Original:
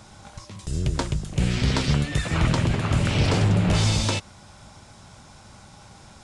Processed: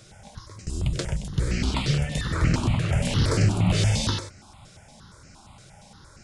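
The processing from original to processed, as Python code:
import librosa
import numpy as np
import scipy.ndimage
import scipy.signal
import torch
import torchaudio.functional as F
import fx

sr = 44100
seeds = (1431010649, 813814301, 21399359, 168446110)

p1 = fx.high_shelf(x, sr, hz=9500.0, db=11.5, at=(3.02, 3.58))
p2 = p1 + fx.echo_single(p1, sr, ms=95, db=-8.0, dry=0)
y = fx.phaser_held(p2, sr, hz=8.6, low_hz=240.0, high_hz=3500.0)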